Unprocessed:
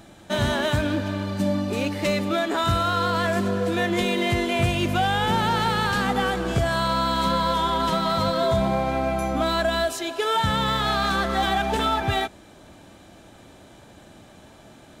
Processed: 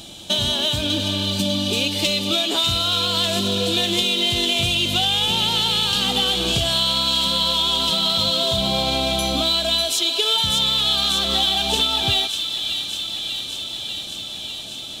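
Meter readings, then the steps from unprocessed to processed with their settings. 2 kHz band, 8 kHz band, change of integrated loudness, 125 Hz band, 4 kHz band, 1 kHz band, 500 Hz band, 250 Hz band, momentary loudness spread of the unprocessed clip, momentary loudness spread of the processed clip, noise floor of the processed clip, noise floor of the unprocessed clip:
−1.5 dB, +11.0 dB, +4.5 dB, −2.0 dB, +14.0 dB, −5.0 dB, −2.5 dB, −1.5 dB, 3 LU, 8 LU, −32 dBFS, −49 dBFS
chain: high shelf with overshoot 2,400 Hz +10 dB, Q 3
downward compressor 4 to 1, threshold −23 dBFS, peak gain reduction 10.5 dB
delay with a high-pass on its return 596 ms, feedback 76%, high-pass 2,200 Hz, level −6 dB
level +4 dB

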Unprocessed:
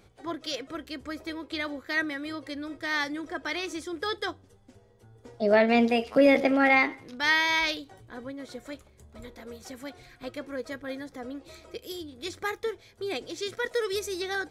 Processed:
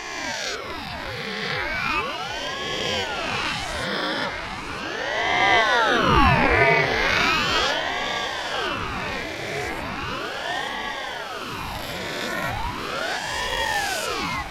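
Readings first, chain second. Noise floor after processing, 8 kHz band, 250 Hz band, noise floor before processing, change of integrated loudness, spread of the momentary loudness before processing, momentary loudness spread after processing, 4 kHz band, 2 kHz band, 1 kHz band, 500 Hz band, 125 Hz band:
−32 dBFS, +10.0 dB, −1.5 dB, −59 dBFS, +4.5 dB, 21 LU, 13 LU, +9.5 dB, +7.0 dB, +9.5 dB, +1.0 dB, +18.0 dB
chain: peak hold with a rise ahead of every peak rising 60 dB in 2.52 s
delay that swaps between a low-pass and a high-pass 479 ms, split 2,100 Hz, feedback 88%, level −8.5 dB
ring modulator whose carrier an LFO sweeps 760 Hz, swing 85%, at 0.37 Hz
level +3 dB

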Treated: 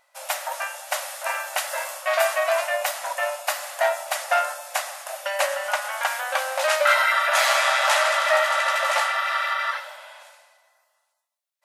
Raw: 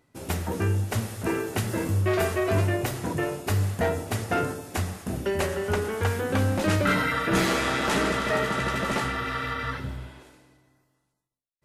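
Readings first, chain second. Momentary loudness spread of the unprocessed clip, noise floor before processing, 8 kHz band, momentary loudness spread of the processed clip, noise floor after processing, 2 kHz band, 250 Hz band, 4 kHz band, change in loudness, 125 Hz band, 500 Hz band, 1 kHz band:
8 LU, −75 dBFS, +7.0 dB, 11 LU, −73 dBFS, +7.0 dB, below −40 dB, +7.0 dB, +3.5 dB, below −40 dB, +2.5 dB, +7.0 dB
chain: linear-phase brick-wall high-pass 530 Hz
level +7 dB

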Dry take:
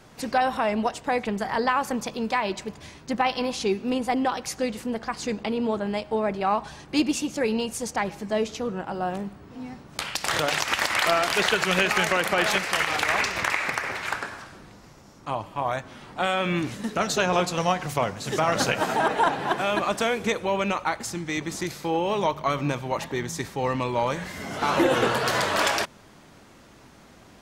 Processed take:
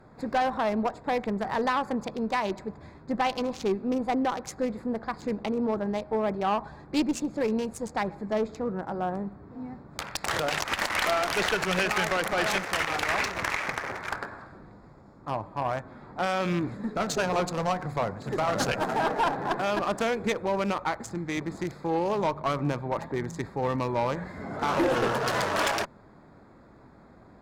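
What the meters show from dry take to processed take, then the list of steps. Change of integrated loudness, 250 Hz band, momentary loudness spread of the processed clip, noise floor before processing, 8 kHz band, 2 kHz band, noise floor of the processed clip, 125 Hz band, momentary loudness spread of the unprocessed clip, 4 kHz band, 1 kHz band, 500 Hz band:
−3.0 dB, −2.0 dB, 9 LU, −51 dBFS, −6.0 dB, −4.5 dB, −53 dBFS, −1.5 dB, 10 LU, −6.0 dB, −3.0 dB, −2.5 dB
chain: adaptive Wiener filter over 15 samples
tube saturation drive 18 dB, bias 0.3

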